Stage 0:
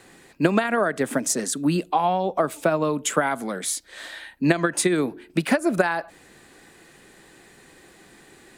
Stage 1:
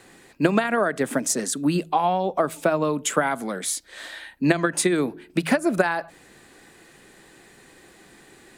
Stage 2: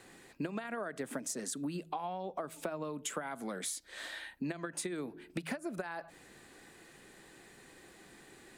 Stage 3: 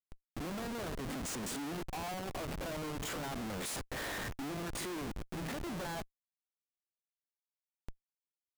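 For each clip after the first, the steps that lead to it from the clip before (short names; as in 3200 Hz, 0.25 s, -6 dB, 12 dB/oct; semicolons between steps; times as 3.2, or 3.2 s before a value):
de-hum 81.25 Hz, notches 2
compressor 10:1, threshold -29 dBFS, peak gain reduction 16 dB; gain -6 dB
stepped spectrum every 50 ms; Schmitt trigger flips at -46 dBFS; gain +4 dB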